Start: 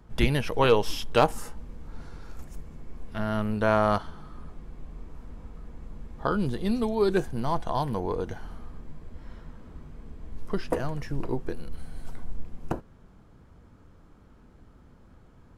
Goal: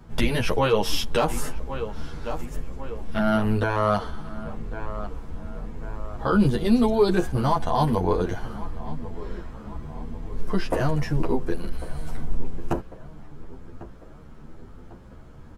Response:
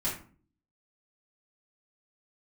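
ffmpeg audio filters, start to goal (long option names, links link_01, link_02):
-filter_complex "[0:a]asplit=2[link_01][link_02];[link_02]adelay=1098,lowpass=frequency=2300:poles=1,volume=-18.5dB,asplit=2[link_03][link_04];[link_04]adelay=1098,lowpass=frequency=2300:poles=1,volume=0.54,asplit=2[link_05][link_06];[link_06]adelay=1098,lowpass=frequency=2300:poles=1,volume=0.54,asplit=2[link_07][link_08];[link_08]adelay=1098,lowpass=frequency=2300:poles=1,volume=0.54,asplit=2[link_09][link_10];[link_10]adelay=1098,lowpass=frequency=2300:poles=1,volume=0.54[link_11];[link_01][link_03][link_05][link_07][link_09][link_11]amix=inputs=6:normalize=0,alimiter=level_in=17.5dB:limit=-1dB:release=50:level=0:latency=1,asplit=2[link_12][link_13];[link_13]adelay=10.2,afreqshift=0.9[link_14];[link_12][link_14]amix=inputs=2:normalize=1,volume=-7dB"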